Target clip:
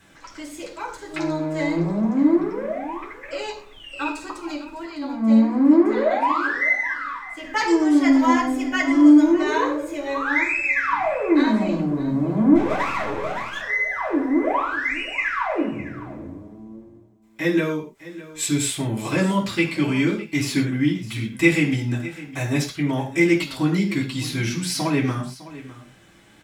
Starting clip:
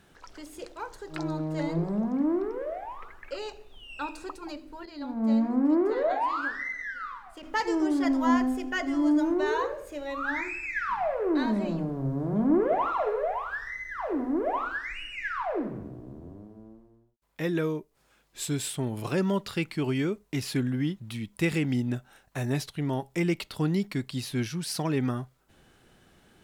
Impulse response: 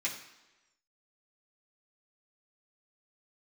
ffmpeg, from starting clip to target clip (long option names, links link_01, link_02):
-filter_complex "[0:a]aecho=1:1:606:0.141,asplit=3[link_01][link_02][link_03];[link_01]afade=type=out:start_time=12.54:duration=0.02[link_04];[link_02]aeval=exprs='max(val(0),0)':channel_layout=same,afade=type=in:start_time=12.54:duration=0.02,afade=type=out:start_time=13.6:duration=0.02[link_05];[link_03]afade=type=in:start_time=13.6:duration=0.02[link_06];[link_04][link_05][link_06]amix=inputs=3:normalize=0[link_07];[1:a]atrim=start_sample=2205,afade=type=out:start_time=0.18:duration=0.01,atrim=end_sample=8379[link_08];[link_07][link_08]afir=irnorm=-1:irlink=0,volume=5dB"